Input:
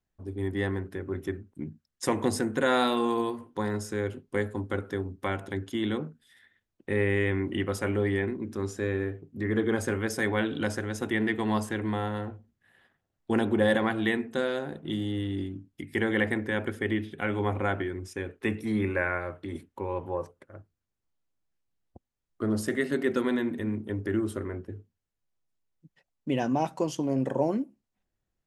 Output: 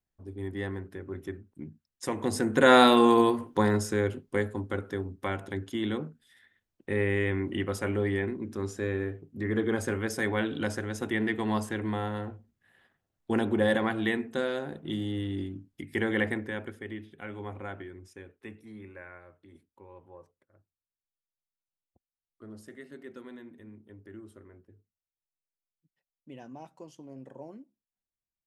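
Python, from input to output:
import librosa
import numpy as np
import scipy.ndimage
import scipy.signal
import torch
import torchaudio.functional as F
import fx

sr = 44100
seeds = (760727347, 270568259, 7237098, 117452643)

y = fx.gain(x, sr, db=fx.line((2.17, -5.0), (2.71, 7.0), (3.51, 7.0), (4.64, -1.5), (16.26, -1.5), (16.85, -11.0), (18.07, -11.0), (18.75, -18.5)))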